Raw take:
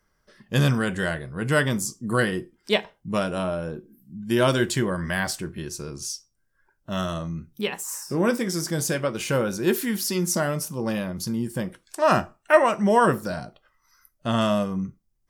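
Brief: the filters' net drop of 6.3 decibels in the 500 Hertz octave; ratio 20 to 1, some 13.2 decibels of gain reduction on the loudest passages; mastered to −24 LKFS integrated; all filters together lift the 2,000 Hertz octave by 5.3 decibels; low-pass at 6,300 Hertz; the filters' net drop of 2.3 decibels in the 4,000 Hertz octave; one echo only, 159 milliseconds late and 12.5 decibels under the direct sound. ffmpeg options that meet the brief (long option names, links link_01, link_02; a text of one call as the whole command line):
ffmpeg -i in.wav -af "lowpass=6300,equalizer=frequency=500:width_type=o:gain=-9,equalizer=frequency=2000:width_type=o:gain=9,equalizer=frequency=4000:width_type=o:gain=-6.5,acompressor=threshold=-23dB:ratio=20,aecho=1:1:159:0.237,volume=6dB" out.wav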